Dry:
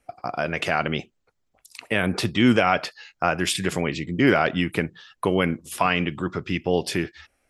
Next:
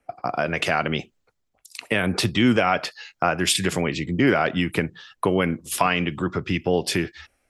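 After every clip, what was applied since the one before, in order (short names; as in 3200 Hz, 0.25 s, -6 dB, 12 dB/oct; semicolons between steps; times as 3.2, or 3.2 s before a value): compressor 2:1, threshold -29 dBFS, peak gain reduction 9 dB; three-band expander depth 40%; gain +7 dB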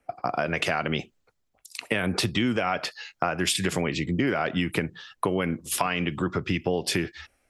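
compressor, threshold -21 dBFS, peak gain reduction 8 dB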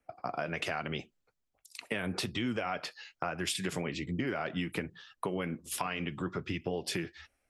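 flange 1.2 Hz, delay 0.5 ms, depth 6.7 ms, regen -64%; gain -4.5 dB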